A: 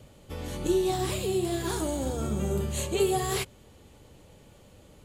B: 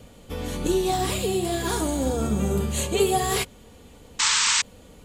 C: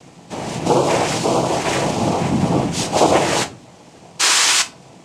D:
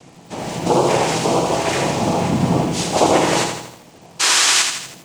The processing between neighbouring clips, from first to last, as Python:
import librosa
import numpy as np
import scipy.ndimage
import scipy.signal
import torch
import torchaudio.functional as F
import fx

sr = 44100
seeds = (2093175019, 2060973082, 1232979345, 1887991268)

y1 = x + 0.38 * np.pad(x, (int(4.2 * sr / 1000.0), 0))[:len(x)]
y1 = fx.spec_paint(y1, sr, seeds[0], shape='noise', start_s=4.19, length_s=0.43, low_hz=850.0, high_hz=8300.0, level_db=-26.0)
y1 = F.gain(torch.from_numpy(y1), 5.0).numpy()
y2 = fx.noise_vocoder(y1, sr, seeds[1], bands=4)
y2 = fx.room_shoebox(y2, sr, seeds[2], volume_m3=180.0, walls='furnished', distance_m=0.68)
y2 = F.gain(torch.from_numpy(y2), 6.5).numpy()
y3 = fx.echo_crushed(y2, sr, ms=81, feedback_pct=55, bits=7, wet_db=-5.5)
y3 = F.gain(torch.from_numpy(y3), -1.0).numpy()